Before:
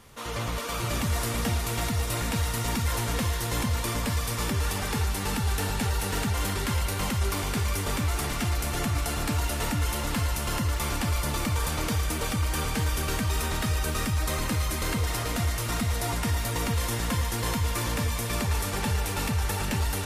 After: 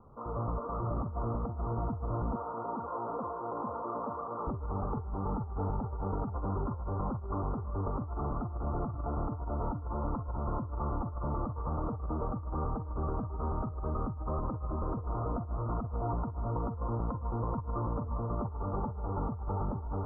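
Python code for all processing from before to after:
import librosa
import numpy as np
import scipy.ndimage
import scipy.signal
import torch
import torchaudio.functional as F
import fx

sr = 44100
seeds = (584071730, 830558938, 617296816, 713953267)

y = fx.chain(x, sr, fx.highpass(hz=390.0, slope=12),
    fx.env_flatten(amount_pct=70), at=(2.35, 4.47))
y = scipy.signal.sosfilt(scipy.signal.butter(16, 1300.0, 'lowpass', fs=sr, output='sos'), y)
y = fx.over_compress(y, sr, threshold_db=-29.0, ratio=-0.5)
y = F.gain(torch.from_numpy(y), -4.0).numpy()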